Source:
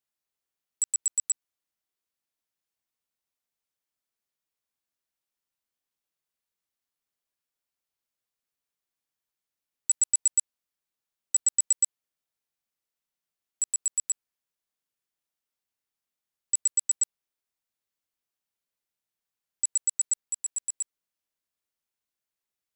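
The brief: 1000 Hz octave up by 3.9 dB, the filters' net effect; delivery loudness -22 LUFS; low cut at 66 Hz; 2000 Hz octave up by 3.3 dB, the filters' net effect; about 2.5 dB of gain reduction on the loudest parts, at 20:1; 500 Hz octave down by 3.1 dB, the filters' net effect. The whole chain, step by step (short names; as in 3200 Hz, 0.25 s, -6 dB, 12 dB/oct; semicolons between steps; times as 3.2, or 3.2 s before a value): HPF 66 Hz; bell 500 Hz -6 dB; bell 1000 Hz +5.5 dB; bell 2000 Hz +3 dB; compressor 20:1, threshold -22 dBFS; gain +6.5 dB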